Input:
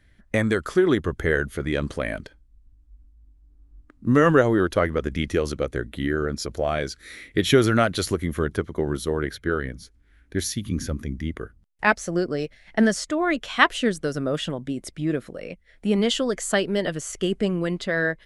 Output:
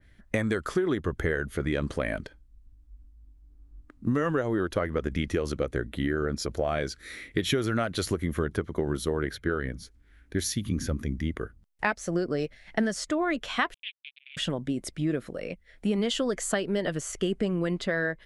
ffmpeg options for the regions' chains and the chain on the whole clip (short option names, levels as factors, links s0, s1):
-filter_complex "[0:a]asettb=1/sr,asplit=3[s0][s1][s2];[s0]atrim=end=13.744[s3];[s1]atrim=start=13.74:end=14.37,asetpts=PTS-STARTPTS,afade=t=in:d=0.004:c=qsin,afade=t=out:st=0.626:d=0.004:c=qsin,acrusher=bits=2:mix=0:aa=0.5,asuperpass=centerf=2900:order=8:qfactor=2.2[s4];[s2]atrim=start=14.366[s5];[s3][s4]acrossfade=d=0.004:c1=hsin:c2=qsin[s6];[s6][s5]acrossfade=d=0.004:c1=qsin:c2=hsin,acompressor=threshold=0.0708:ratio=6,adynamicequalizer=threshold=0.00631:dfrequency=2600:dqfactor=0.7:tfrequency=2600:tqfactor=0.7:attack=5:release=100:ratio=0.375:range=1.5:mode=cutabove:tftype=highshelf"